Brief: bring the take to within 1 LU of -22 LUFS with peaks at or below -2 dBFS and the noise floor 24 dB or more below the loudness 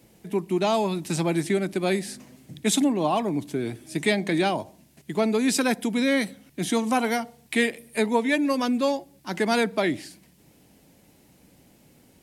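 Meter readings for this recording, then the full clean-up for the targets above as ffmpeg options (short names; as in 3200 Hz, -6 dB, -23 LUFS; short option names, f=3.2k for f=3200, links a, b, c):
loudness -25.0 LUFS; peak -9.5 dBFS; loudness target -22.0 LUFS
-> -af "volume=3dB"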